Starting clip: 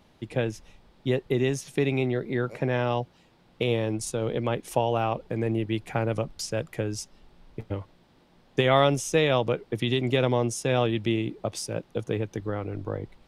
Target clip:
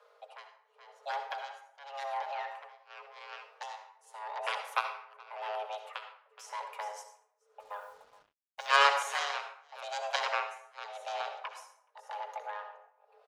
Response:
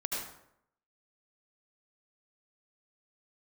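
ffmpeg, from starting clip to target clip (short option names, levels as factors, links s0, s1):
-filter_complex "[0:a]equalizer=f=860:t=o:w=1.8:g=10,bandreject=f=60:t=h:w=6,bandreject=f=120:t=h:w=6,bandreject=f=180:t=h:w=6,aecho=1:1:4.9:0.52,aeval=exprs='val(0)+0.002*(sin(2*PI*50*n/s)+sin(2*PI*2*50*n/s)/2+sin(2*PI*3*50*n/s)/3+sin(2*PI*4*50*n/s)/4+sin(2*PI*5*50*n/s)/5)':c=same,aeval=exprs='0.944*(cos(1*acos(clip(val(0)/0.944,-1,1)))-cos(1*PI/2))+0.0531*(cos(2*acos(clip(val(0)/0.944,-1,1)))-cos(2*PI/2))+0.188*(cos(3*acos(clip(val(0)/0.944,-1,1)))-cos(3*PI/2))+0.0119*(cos(4*acos(clip(val(0)/0.944,-1,1)))-cos(4*PI/2))+0.119*(cos(7*acos(clip(val(0)/0.944,-1,1)))-cos(7*PI/2))':c=same,afreqshift=420,aecho=1:1:422:0.188,tremolo=f=0.89:d=1,asplit=2[s0][s1];[1:a]atrim=start_sample=2205,asetrate=52920,aresample=44100[s2];[s1][s2]afir=irnorm=-1:irlink=0,volume=0.531[s3];[s0][s3]amix=inputs=2:normalize=0,asplit=3[s4][s5][s6];[s4]afade=t=out:st=7.59:d=0.02[s7];[s5]acrusher=bits=8:mix=0:aa=0.5,afade=t=in:st=7.59:d=0.02,afade=t=out:st=8.81:d=0.02[s8];[s6]afade=t=in:st=8.81:d=0.02[s9];[s7][s8][s9]amix=inputs=3:normalize=0,volume=0.422"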